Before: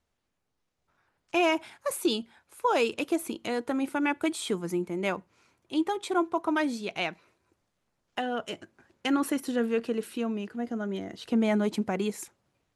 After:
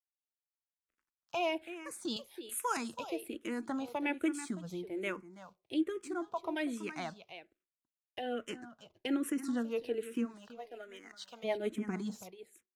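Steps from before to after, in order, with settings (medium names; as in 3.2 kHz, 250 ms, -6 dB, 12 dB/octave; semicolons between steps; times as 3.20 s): 2.16–2.77 s: tilt EQ +4.5 dB/octave; 10.24–11.43 s: high-pass 440 Hz -> 1.3 kHz 12 dB/octave; in parallel at +0.5 dB: compression, threshold -39 dBFS, peak gain reduction 17 dB; on the sum: rotary cabinet horn 0.7 Hz, later 6.7 Hz, at 7.74 s; crossover distortion -59 dBFS; delay 329 ms -13.5 dB; on a send at -20 dB: reverberation RT60 0.35 s, pre-delay 3 ms; on the sum: barber-pole phaser -1.2 Hz; trim -4.5 dB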